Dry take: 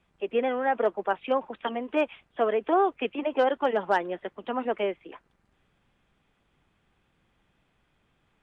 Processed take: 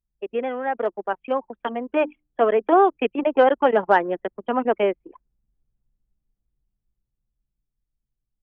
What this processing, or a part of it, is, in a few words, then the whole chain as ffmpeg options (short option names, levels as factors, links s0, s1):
voice memo with heavy noise removal: -filter_complex "[0:a]asettb=1/sr,asplit=3[s0][s1][s2];[s0]atrim=end=1.964[s3];[s1]atrim=start=1.96:end=2.96,asetpts=PTS-STARTPTS,afade=t=in:d=0.004:c=qsin,afade=t=out:st=0.996:d=0.004:c=qsin,bandreject=f=50:t=h:w=6,bandreject=f=100:t=h:w=6,bandreject=f=150:t=h:w=6,bandreject=f=200:t=h:w=6,bandreject=f=250:t=h:w=6,bandreject=f=300:t=h:w=6[s4];[s2]atrim=start=2.956[s5];[s3][s4]acrossfade=d=0.004:c1=hsin:c2=qsin[s6];[s6][s5]acrossfade=d=0.004:c1=qsin:c2=hsin,anlmdn=6.31,dynaudnorm=f=230:g=17:m=2.51,acrossover=split=3100[s7][s8];[s8]acompressor=threshold=0.00282:ratio=4:attack=1:release=60[s9];[s7][s9]amix=inputs=2:normalize=0"